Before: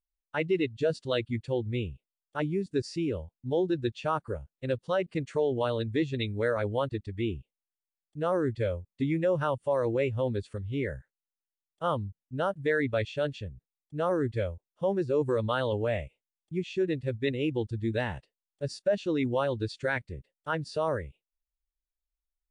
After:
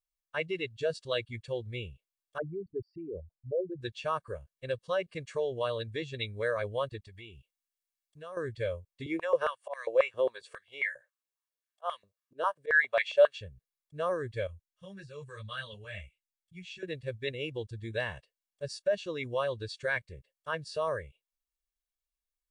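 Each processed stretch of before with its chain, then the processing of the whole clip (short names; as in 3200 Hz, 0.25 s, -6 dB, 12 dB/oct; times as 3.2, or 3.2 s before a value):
2.38–3.81 formant sharpening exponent 3 + LPF 2000 Hz 24 dB/oct
7.06–8.37 tilt shelf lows -3.5 dB, about 1400 Hz + compressor 3:1, threshold -40 dBFS
9.06–13.38 auto swell 0.145 s + stepped high-pass 7.4 Hz 350–2000 Hz
14.47–16.83 band shelf 510 Hz -14 dB 2.4 oct + ensemble effect
whole clip: tilt shelf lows -4.5 dB, about 640 Hz; comb 1.8 ms, depth 58%; gain -5.5 dB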